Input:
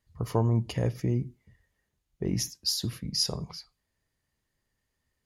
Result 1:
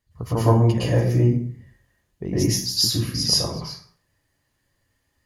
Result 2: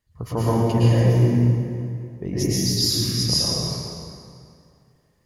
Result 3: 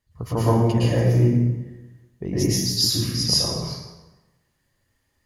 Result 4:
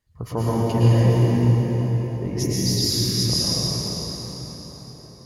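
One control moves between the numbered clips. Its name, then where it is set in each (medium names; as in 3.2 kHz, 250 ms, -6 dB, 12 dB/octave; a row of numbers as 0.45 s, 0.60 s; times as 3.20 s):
plate-style reverb, RT60: 0.52 s, 2.4 s, 1.1 s, 5.3 s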